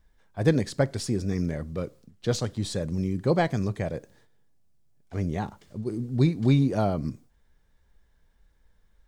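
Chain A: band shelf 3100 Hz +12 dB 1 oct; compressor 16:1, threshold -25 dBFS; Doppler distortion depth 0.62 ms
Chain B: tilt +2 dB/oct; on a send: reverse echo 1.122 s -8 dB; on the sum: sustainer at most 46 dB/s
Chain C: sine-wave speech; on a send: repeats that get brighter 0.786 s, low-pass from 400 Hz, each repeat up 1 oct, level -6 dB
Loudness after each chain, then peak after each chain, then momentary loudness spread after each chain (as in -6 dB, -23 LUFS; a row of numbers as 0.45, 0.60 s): -32.5, -29.0, -27.5 LUFS; -15.5, -9.5, -10.5 dBFS; 7, 15, 11 LU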